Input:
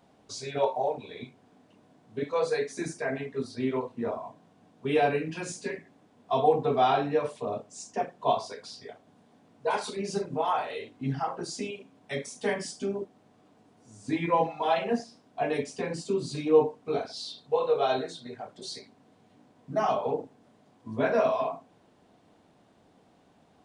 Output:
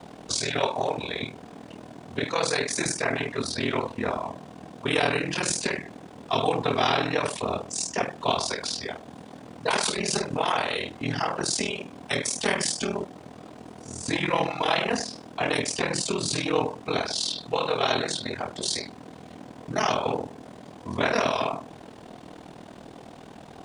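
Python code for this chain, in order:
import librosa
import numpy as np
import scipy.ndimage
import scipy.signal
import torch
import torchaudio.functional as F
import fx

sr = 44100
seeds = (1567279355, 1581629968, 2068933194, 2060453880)

y = x * np.sin(2.0 * np.pi * 20.0 * np.arange(len(x)) / sr)
y = fx.spectral_comp(y, sr, ratio=2.0)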